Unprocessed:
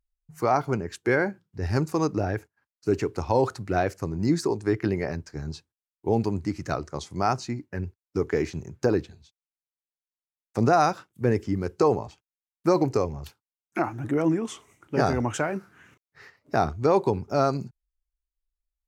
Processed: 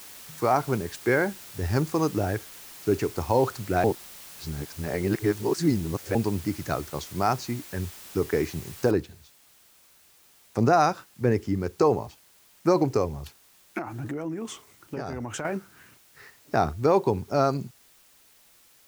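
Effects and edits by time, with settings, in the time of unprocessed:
3.84–6.15 reverse
8.91 noise floor step -45 dB -58 dB
13.78–15.45 compressor, threshold -29 dBFS

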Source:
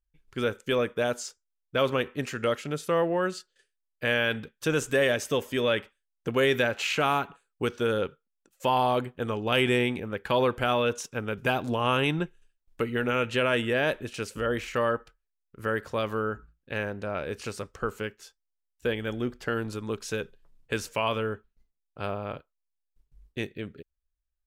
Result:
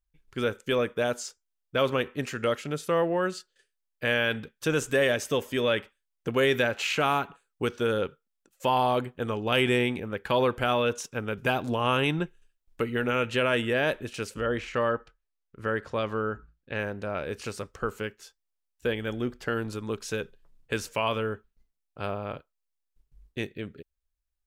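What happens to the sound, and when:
14.34–16.79 air absorption 64 m

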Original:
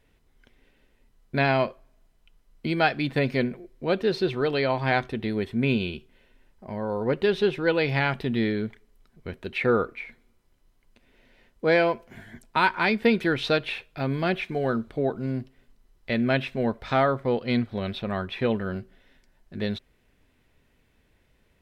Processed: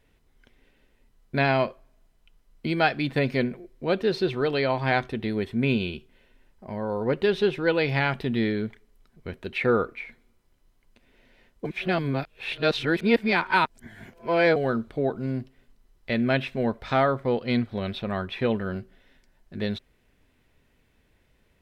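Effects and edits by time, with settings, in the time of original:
11.65–14.56 reverse

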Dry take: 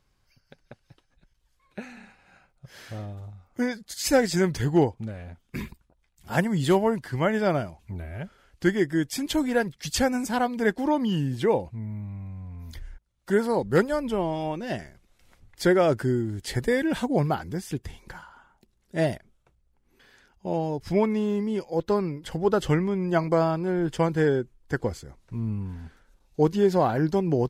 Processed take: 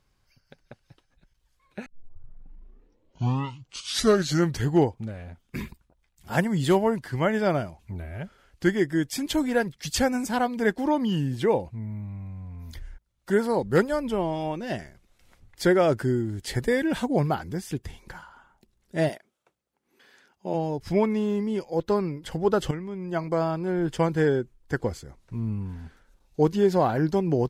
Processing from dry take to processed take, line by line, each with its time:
1.86 tape start 2.81 s
19.08–20.53 HPF 360 Hz -> 170 Hz
22.71–23.84 fade in linear, from -12 dB

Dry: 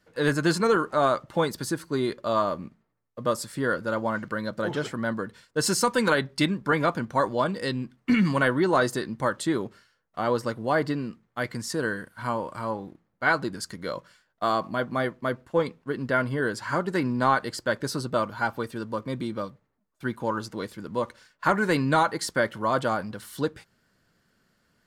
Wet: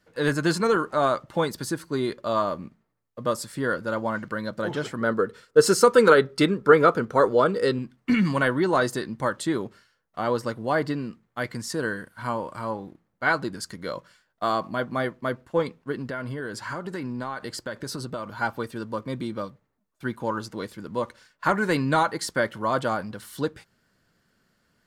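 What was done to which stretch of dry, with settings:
5.01–7.79 small resonant body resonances 440/1300 Hz, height 14 dB, ringing for 30 ms
15.95–18.36 compressor, threshold -28 dBFS

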